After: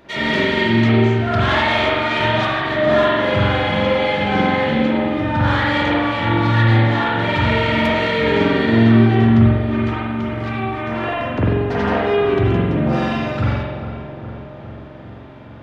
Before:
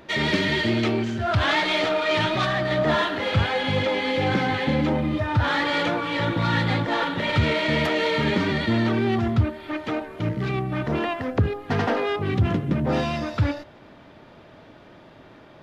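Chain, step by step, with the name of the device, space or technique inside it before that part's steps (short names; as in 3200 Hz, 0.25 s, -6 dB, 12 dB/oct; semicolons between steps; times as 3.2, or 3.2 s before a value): 9.74–11.04 resonant low shelf 630 Hz -6.5 dB, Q 1.5; dub delay into a spring reverb (darkening echo 0.41 s, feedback 69%, low-pass 2000 Hz, level -11 dB; spring tank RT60 1.2 s, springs 44 ms, chirp 75 ms, DRR -6.5 dB); gain -2 dB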